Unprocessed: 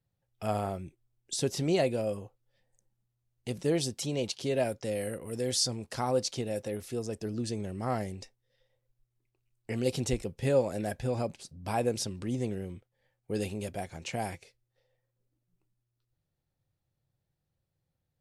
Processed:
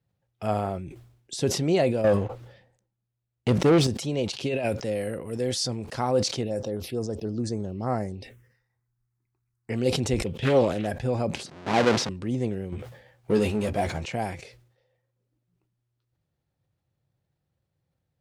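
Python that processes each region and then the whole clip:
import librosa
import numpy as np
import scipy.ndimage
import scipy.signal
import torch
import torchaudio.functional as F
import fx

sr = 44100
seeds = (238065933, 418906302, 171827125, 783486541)

y = fx.chain(x, sr, fx.high_shelf(hz=6300.0, db=-10.0),
    fx.leveller(passes=3), at=(2.04, 3.87))
y = fx.chain(y, sr, fx.over_compress(threshold_db=-31.0, ratio=-1.0),
    fx.peak_eq(hz=2600.0, db=11.5, octaves=0.24), at=(4.37, 4.78))
y = fx.chain(y, sr, fx.high_shelf(hz=11000.0, db=3.5),
    fx.env_phaser(low_hz=520.0, high_hz=3300.0, full_db=-29.5), at=(6.43, 9.7))
y = fx.chain(y, sr, fx.peak_eq(hz=3200.0, db=13.5, octaves=0.6),
    fx.doppler_dist(depth_ms=0.46), at=(10.26, 10.87))
y = fx.chain(y, sr, fx.halfwave_hold(),
    fx.bandpass_edges(low_hz=190.0, high_hz=6200.0), at=(11.46, 12.09))
y = fx.chain(y, sr, fx.transient(attack_db=4, sustain_db=-4),
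    fx.power_curve(exponent=0.7),
    fx.doubler(ms=14.0, db=-6.5), at=(12.72, 14.05))
y = scipy.signal.sosfilt(scipy.signal.butter(2, 52.0, 'highpass', fs=sr, output='sos'), y)
y = fx.high_shelf(y, sr, hz=5500.0, db=-10.5)
y = fx.sustainer(y, sr, db_per_s=81.0)
y = y * librosa.db_to_amplitude(4.5)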